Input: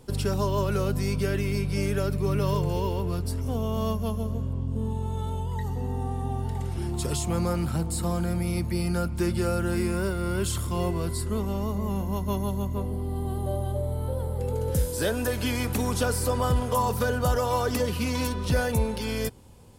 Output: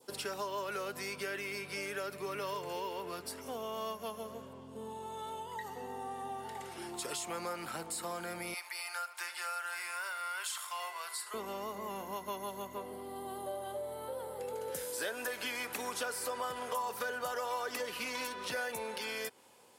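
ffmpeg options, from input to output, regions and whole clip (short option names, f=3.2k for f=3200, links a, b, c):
-filter_complex "[0:a]asettb=1/sr,asplit=3[a][b][c];[a]atrim=end=8.544[d];[b]atrim=start=8.54:end=11.34,asetpts=PTS-STARTPTS,afade=t=in:d=0.004:c=qsin,afade=t=out:st=2.796:d=0.004:c=qsin,highpass=f=790:w=0.5412,highpass=f=790:w=1.3066,aecho=1:1:76:0.188,atrim=end_sample=123480[e];[c]atrim=start=11.336[f];[d][e]acrossfade=d=0.004:c1=hsin:c2=qsin[g];[g][f]acrossfade=d=0.004:c1=qsin:c2=hsin,highpass=490,adynamicequalizer=threshold=0.00398:dfrequency=1900:dqfactor=1.1:tfrequency=1900:tqfactor=1.1:attack=5:release=100:ratio=0.375:range=3:mode=boostabove:tftype=bell,acompressor=threshold=-35dB:ratio=2.5,volume=-2.5dB"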